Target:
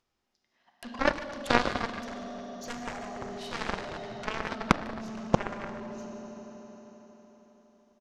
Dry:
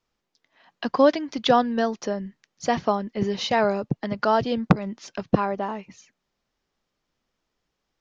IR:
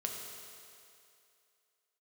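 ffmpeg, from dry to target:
-filter_complex "[0:a]agate=range=0.00398:threshold=0.00282:ratio=16:detection=peak,acompressor=mode=upward:threshold=0.0708:ratio=2.5,asplit=2[s0][s1];[s1]adelay=150,highpass=300,lowpass=3400,asoftclip=type=hard:threshold=0.266,volume=0.447[s2];[s0][s2]amix=inputs=2:normalize=0[s3];[1:a]atrim=start_sample=2205,asetrate=24696,aresample=44100[s4];[s3][s4]afir=irnorm=-1:irlink=0,aeval=exprs='0.891*(cos(1*acos(clip(val(0)/0.891,-1,1)))-cos(1*PI/2))+0.355*(cos(3*acos(clip(val(0)/0.891,-1,1)))-cos(3*PI/2))+0.00562*(cos(6*acos(clip(val(0)/0.891,-1,1)))-cos(6*PI/2))':c=same,volume=0.708"

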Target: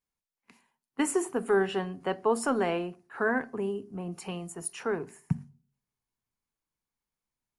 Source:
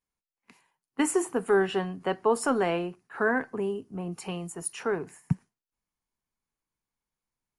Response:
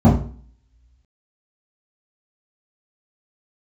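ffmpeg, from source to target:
-filter_complex "[0:a]asplit=2[s0][s1];[s1]equalizer=f=100:t=o:w=2.4:g=-15[s2];[1:a]atrim=start_sample=2205,adelay=28[s3];[s2][s3]afir=irnorm=-1:irlink=0,volume=0.0075[s4];[s0][s4]amix=inputs=2:normalize=0,volume=0.794"

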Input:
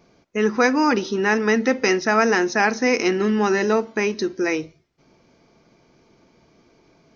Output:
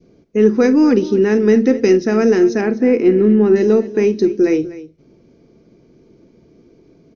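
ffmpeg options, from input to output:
-filter_complex "[0:a]adynamicequalizer=threshold=0.0316:dfrequency=1000:dqfactor=0.78:tfrequency=1000:tqfactor=0.78:attack=5:release=100:ratio=0.375:range=1.5:mode=cutabove:tftype=bell,asettb=1/sr,asplit=3[s0][s1][s2];[s0]atrim=end=2.614[s3];[s1]atrim=start=2.61:end=3.56,asetpts=PTS-STARTPTS,afade=t=in:d=0.004:c=qsin,afade=t=out:st=0.946:d=0.004:c=qsin,lowpass=2300[s4];[s2]atrim=start=3.556[s5];[s3][s4]acrossfade=d=0.004:c1=hsin:c2=qsin[s6];[s6][s5]acrossfade=d=0.004:c1=qsin:c2=hsin,lowshelf=f=590:t=q:w=1.5:g=11,aeval=exprs='1.41*(cos(1*acos(clip(val(0)/1.41,-1,1)))-cos(1*PI/2))+0.00891*(cos(4*acos(clip(val(0)/1.41,-1,1)))-cos(4*PI/2))':c=same,asplit=2[s7][s8];[s8]aecho=0:1:42|48|248:0.112|0.119|0.15[s9];[s7][s9]amix=inputs=2:normalize=0,volume=0.631"

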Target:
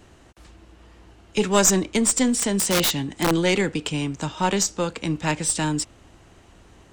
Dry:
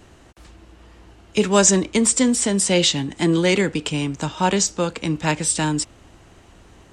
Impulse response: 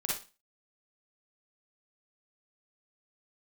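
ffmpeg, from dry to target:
-filter_complex "[0:a]aeval=exprs='0.891*(cos(1*acos(clip(val(0)/0.891,-1,1)))-cos(1*PI/2))+0.316*(cos(2*acos(clip(val(0)/0.891,-1,1)))-cos(2*PI/2))+0.00708*(cos(8*acos(clip(val(0)/0.891,-1,1)))-cos(8*PI/2))':c=same,asettb=1/sr,asplit=3[s0][s1][s2];[s0]atrim=end=2.344[s3];[s1]atrim=start=2.34:end=3.44,asetpts=PTS-STARTPTS,afade=t=in:d=0.004:c=qsin,afade=t=out:st=1.096:d=0.004:c=qsin,aeval=exprs='(mod(3.55*val(0)+1,2)-1)/3.55':c=same[s4];[s2]atrim=start=3.436[s5];[s3][s4]acrossfade=d=0.004:c1=hsin:c2=qsin[s6];[s6][s5]acrossfade=d=0.004:c1=qsin:c2=hsin,volume=0.75"

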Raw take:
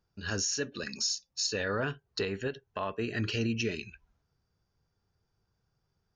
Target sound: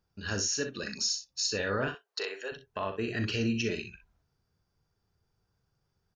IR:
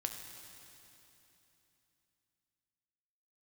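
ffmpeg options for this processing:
-filter_complex "[0:a]asettb=1/sr,asplit=3[s0][s1][s2];[s0]atrim=end=1.884[s3];[s1]atrim=start=1.88:end=2.52,asetpts=PTS-STARTPTS,afade=t=in:d=0.004:c=qsin,afade=t=out:st=0.636:d=0.004:c=qsin,highpass=f=470:w=0.5412,highpass=f=470:w=1.3066[s4];[s2]atrim=start=2.516[s5];[s3][s4]acrossfade=d=0.004:c1=hsin:c2=qsin[s6];[s6][s5]acrossfade=d=0.004:c1=qsin:c2=hsin,aecho=1:1:39|62:0.316|0.299"

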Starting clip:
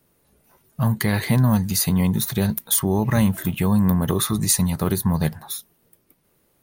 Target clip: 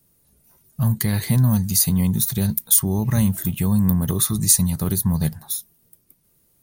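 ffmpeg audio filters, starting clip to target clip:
-af "bass=f=250:g=9,treble=f=4000:g=12,volume=0.447"

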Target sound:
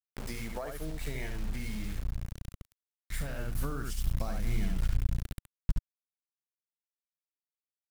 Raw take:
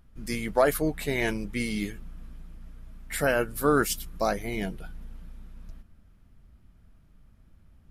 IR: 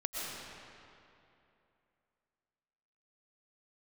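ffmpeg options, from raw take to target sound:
-filter_complex "[0:a]highshelf=f=9300:g=-4.5,acrusher=bits=5:mix=0:aa=0.000001,aecho=1:1:70:0.596,acompressor=threshold=0.0141:ratio=6,asettb=1/sr,asplit=3[s0][s1][s2];[s0]atrim=end=1.264[s3];[s1]atrim=start=1.26:end=3.39,asetpts=PTS-STARTPTS,afade=t=in:d=0.004:c=qsin,afade=t=out:st=2.126:d=0.004:c=qsin,asoftclip=type=hard:threshold=0.0133[s4];[s2]atrim=start=3.386[s5];[s3][s4]acrossfade=d=0.004:c1=hsin:c2=qsin[s6];[s6][s5]acrossfade=d=0.004:c1=qsin:c2=hsin,asubboost=boost=8:cutoff=150"

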